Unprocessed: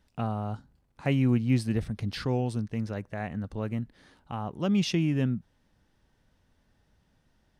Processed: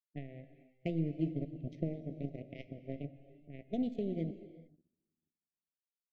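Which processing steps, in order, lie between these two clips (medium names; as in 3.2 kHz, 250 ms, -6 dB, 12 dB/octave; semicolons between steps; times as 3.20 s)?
high-pass 90 Hz 12 dB/octave; peaking EQ 670 Hz -5 dB 0.24 oct; tape speed +24%; on a send: echo that smears into a reverb 575 ms, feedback 57%, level -14 dB; on the sum: one-sided clip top -20 dBFS, bottom -17 dBFS; power-law waveshaper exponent 3; compression 10:1, threshold -43 dBFS, peak gain reduction 18 dB; level-controlled noise filter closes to 360 Hz, open at -46 dBFS; elliptic band-stop 670–2000 Hz, stop band 40 dB; treble shelf 4.7 kHz -9.5 dB; gated-style reverb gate 470 ms flat, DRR 6.5 dB; spectral contrast expander 1.5:1; trim +11 dB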